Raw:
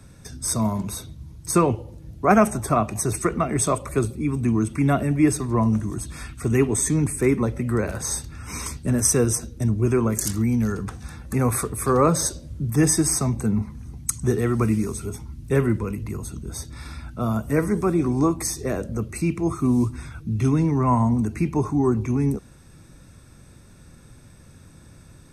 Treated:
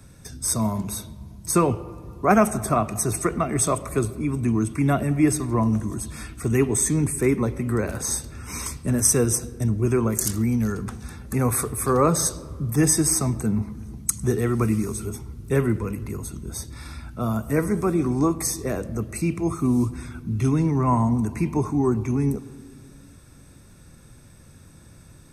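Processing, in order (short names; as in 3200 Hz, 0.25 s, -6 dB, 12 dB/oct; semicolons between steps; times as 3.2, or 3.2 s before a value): high shelf 11000 Hz +7.5 dB; on a send: reverb RT60 2.1 s, pre-delay 76 ms, DRR 18 dB; on the sum: gain -1 dB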